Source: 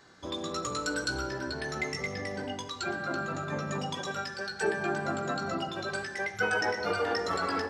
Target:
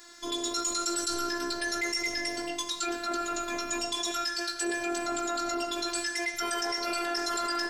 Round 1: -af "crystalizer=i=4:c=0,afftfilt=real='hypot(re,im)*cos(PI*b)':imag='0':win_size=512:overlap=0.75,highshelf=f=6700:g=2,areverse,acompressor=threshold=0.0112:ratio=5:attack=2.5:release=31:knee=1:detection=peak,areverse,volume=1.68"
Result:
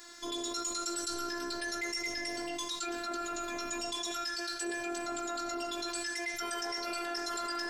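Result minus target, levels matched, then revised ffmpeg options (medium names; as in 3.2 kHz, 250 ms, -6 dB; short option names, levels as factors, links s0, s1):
compression: peak gain reduction +5.5 dB
-af "crystalizer=i=4:c=0,afftfilt=real='hypot(re,im)*cos(PI*b)':imag='0':win_size=512:overlap=0.75,highshelf=f=6700:g=2,areverse,acompressor=threshold=0.0251:ratio=5:attack=2.5:release=31:knee=1:detection=peak,areverse,volume=1.68"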